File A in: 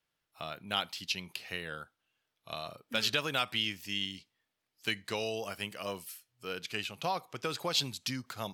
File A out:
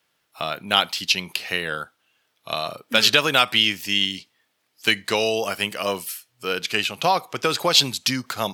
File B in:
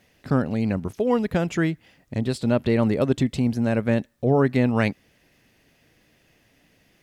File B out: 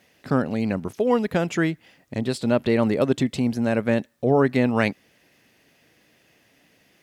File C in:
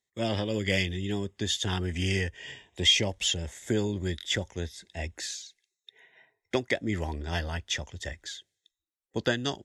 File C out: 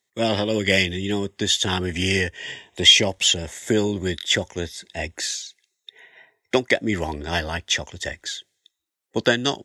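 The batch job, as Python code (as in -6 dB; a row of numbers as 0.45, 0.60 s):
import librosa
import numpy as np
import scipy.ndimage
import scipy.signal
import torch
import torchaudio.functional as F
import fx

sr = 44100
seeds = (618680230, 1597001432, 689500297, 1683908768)

y = fx.highpass(x, sr, hz=200.0, slope=6)
y = y * 10.0 ** (-24 / 20.0) / np.sqrt(np.mean(np.square(y)))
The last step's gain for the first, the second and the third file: +14.0, +2.0, +9.0 dB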